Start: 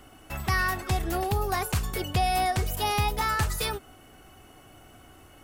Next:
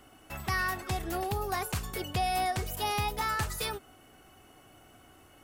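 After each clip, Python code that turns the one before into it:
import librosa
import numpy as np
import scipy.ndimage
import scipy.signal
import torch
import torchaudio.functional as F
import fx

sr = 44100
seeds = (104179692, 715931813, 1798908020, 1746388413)

y = fx.low_shelf(x, sr, hz=91.0, db=-6.5)
y = y * librosa.db_to_amplitude(-4.0)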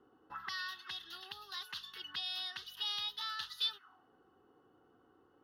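y = fx.fixed_phaser(x, sr, hz=2300.0, stages=6)
y = fx.auto_wah(y, sr, base_hz=440.0, top_hz=3500.0, q=3.1, full_db=-33.5, direction='up')
y = y * librosa.db_to_amplitude(6.0)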